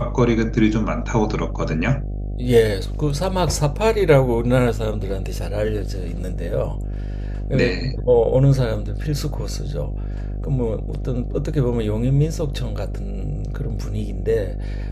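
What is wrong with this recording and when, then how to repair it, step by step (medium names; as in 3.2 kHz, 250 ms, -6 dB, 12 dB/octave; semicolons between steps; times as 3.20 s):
buzz 50 Hz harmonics 15 -26 dBFS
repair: de-hum 50 Hz, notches 15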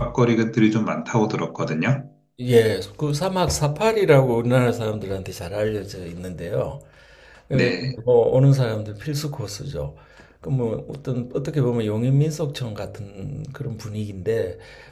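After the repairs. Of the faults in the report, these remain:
nothing left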